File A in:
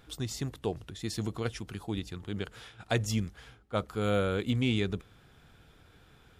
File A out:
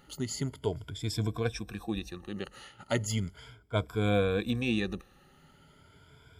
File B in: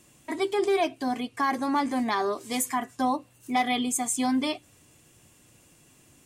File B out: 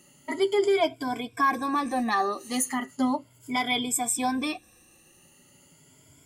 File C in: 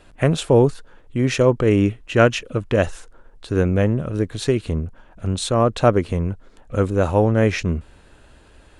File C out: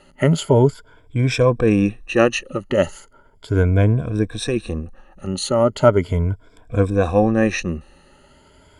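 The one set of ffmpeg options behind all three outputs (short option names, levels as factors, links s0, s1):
-af "afftfilt=real='re*pow(10,16/40*sin(2*PI*(1.7*log(max(b,1)*sr/1024/100)/log(2)-(0.37)*(pts-256)/sr)))':imag='im*pow(10,16/40*sin(2*PI*(1.7*log(max(b,1)*sr/1024/100)/log(2)-(0.37)*(pts-256)/sr)))':win_size=1024:overlap=0.75,volume=0.794"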